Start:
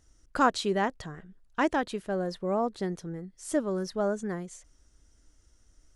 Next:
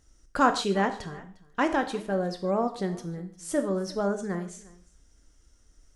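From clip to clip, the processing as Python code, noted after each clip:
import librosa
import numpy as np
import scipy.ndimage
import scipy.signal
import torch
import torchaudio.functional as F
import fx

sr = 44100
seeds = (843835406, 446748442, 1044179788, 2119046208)

y = x + 10.0 ** (-22.0 / 20.0) * np.pad(x, (int(353 * sr / 1000.0), 0))[:len(x)]
y = fx.rev_gated(y, sr, seeds[0], gate_ms=180, shape='falling', drr_db=6.5)
y = F.gain(torch.from_numpy(y), 1.0).numpy()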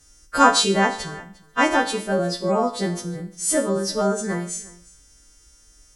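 y = fx.freq_snap(x, sr, grid_st=2)
y = F.gain(torch.from_numpy(y), 6.0).numpy()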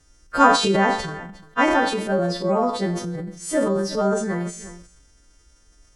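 y = fx.transient(x, sr, attack_db=1, sustain_db=8)
y = fx.lowpass(y, sr, hz=2600.0, slope=6)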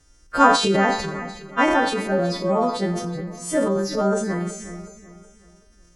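y = fx.echo_feedback(x, sr, ms=372, feedback_pct=39, wet_db=-14)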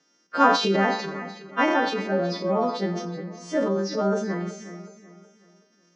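y = scipy.signal.sosfilt(scipy.signal.cheby1(4, 1.0, [180.0, 5900.0], 'bandpass', fs=sr, output='sos'), x)
y = F.gain(torch.from_numpy(y), -2.5).numpy()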